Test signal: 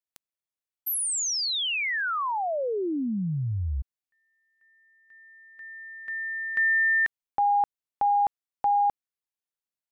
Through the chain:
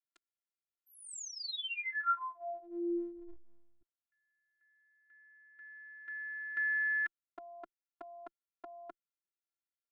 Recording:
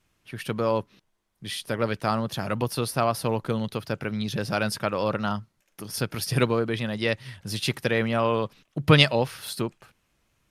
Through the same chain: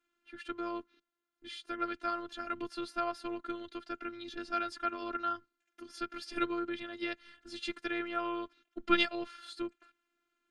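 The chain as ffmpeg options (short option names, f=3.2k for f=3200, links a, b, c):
-af "highpass=f=150:w=0.5412,highpass=f=150:w=1.3066,equalizer=f=160:t=q:w=4:g=8,equalizer=f=300:t=q:w=4:g=4,equalizer=f=560:t=q:w=4:g=-4,equalizer=f=880:t=q:w=4:g=-10,equalizer=f=1.4k:t=q:w=4:g=10,equalizer=f=5.6k:t=q:w=4:g=-8,lowpass=f=7.1k:w=0.5412,lowpass=f=7.1k:w=1.3066,afftfilt=real='hypot(re,im)*cos(PI*b)':imag='0':win_size=512:overlap=0.75,volume=-7.5dB"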